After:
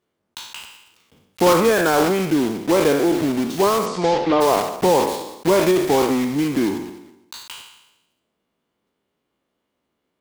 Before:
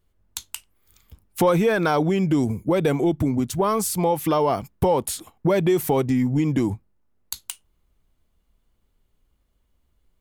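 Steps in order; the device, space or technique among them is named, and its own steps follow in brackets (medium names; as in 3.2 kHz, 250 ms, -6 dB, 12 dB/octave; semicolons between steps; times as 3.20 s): spectral sustain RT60 0.92 s; early digital voice recorder (band-pass 280–3800 Hz; block-companded coder 3-bit); 3.85–4.40 s: low-pass 9 kHz -> 3.7 kHz 24 dB/octave; peaking EQ 210 Hz +4 dB 2.9 oct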